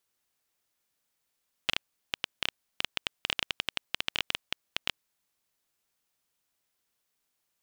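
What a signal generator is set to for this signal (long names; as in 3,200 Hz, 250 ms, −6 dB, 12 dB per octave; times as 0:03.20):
Geiger counter clicks 10 per second −9 dBFS 3.51 s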